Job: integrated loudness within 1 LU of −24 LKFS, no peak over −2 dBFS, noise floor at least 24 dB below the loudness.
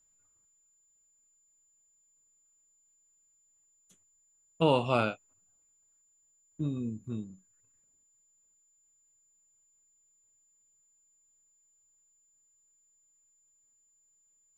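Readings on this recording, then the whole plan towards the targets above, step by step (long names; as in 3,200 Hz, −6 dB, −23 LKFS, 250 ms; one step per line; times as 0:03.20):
interfering tone 7,100 Hz; level of the tone −67 dBFS; integrated loudness −31.5 LKFS; sample peak −11.5 dBFS; target loudness −24.0 LKFS
→ notch filter 7,100 Hz, Q 30
level +7.5 dB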